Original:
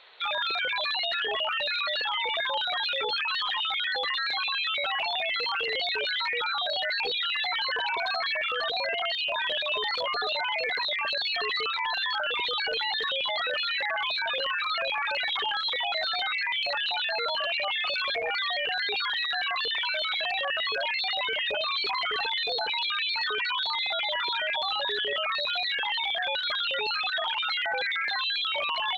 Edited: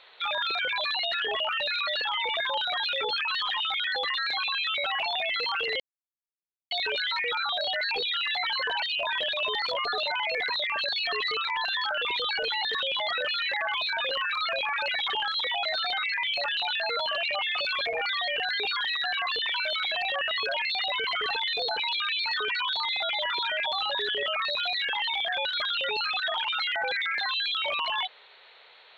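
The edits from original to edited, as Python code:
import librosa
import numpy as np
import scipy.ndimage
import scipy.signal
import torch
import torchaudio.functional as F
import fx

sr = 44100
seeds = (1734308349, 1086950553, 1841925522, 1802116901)

y = fx.edit(x, sr, fx.insert_silence(at_s=5.8, length_s=0.91),
    fx.cut(start_s=7.91, length_s=1.2),
    fx.cut(start_s=21.36, length_s=0.61), tone=tone)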